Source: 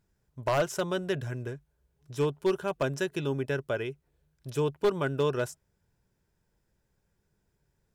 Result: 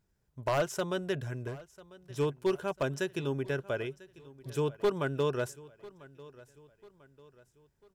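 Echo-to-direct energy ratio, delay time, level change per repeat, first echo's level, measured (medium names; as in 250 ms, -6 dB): -19.5 dB, 995 ms, -7.0 dB, -20.5 dB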